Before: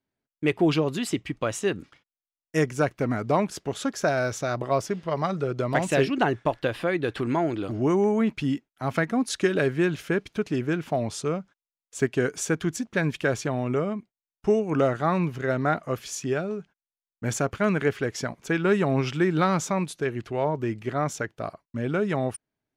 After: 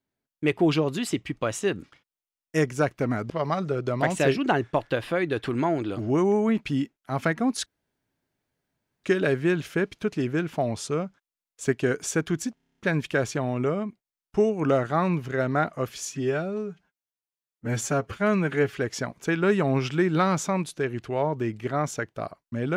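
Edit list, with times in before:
3.3–5.02 cut
9.38 insert room tone 1.38 s
12.88 stutter 0.03 s, 9 plays
16.19–17.95 stretch 1.5×

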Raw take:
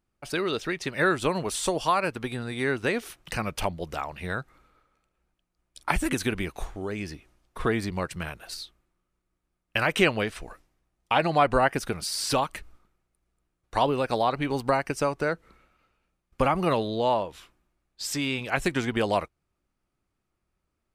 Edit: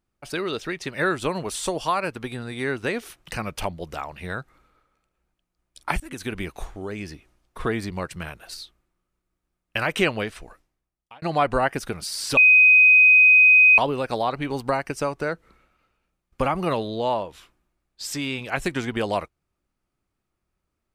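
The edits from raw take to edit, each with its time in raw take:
6–6.42 fade in, from -22 dB
10.21–11.22 fade out
12.37–13.78 bleep 2510 Hz -10 dBFS

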